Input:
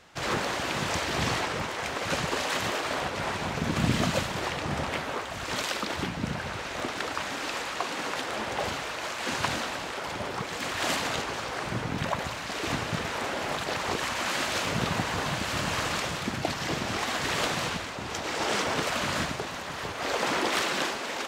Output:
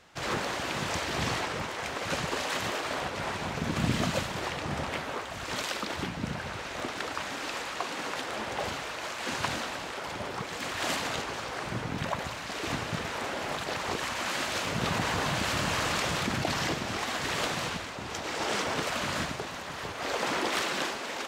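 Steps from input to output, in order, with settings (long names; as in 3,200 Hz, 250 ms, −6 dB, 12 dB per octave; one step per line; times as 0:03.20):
0:14.84–0:16.73: envelope flattener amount 70%
level −2.5 dB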